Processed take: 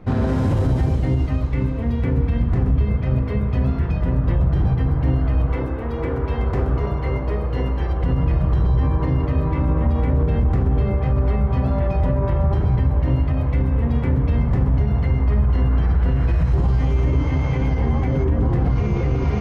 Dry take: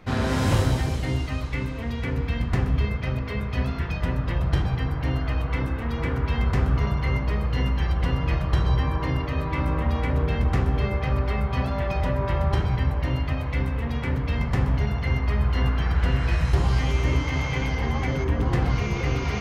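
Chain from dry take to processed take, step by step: 5.52–8.04 resonant low shelf 280 Hz -6.5 dB, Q 1.5; limiter -18 dBFS, peak gain reduction 8.5 dB; tilt shelf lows +8.5 dB, about 1200 Hz

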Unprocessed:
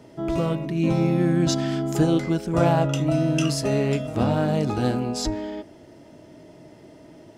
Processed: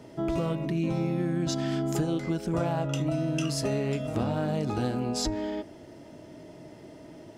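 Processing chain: compressor, threshold -25 dBFS, peak gain reduction 10.5 dB

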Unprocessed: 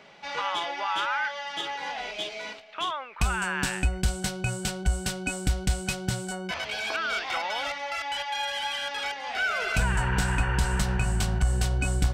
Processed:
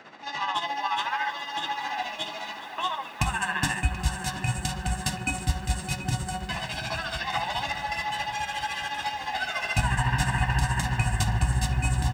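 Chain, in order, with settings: HPF 71 Hz; comb 1.1 ms, depth 97%; band noise 210–1900 Hz -49 dBFS; tremolo 14 Hz, depth 71%; darkening echo 0.731 s, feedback 59%, low-pass 4300 Hz, level -12 dB; on a send at -5 dB: reverb RT60 0.45 s, pre-delay 3 ms; on the sum: lo-fi delay 0.416 s, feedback 80%, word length 8-bit, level -15 dB

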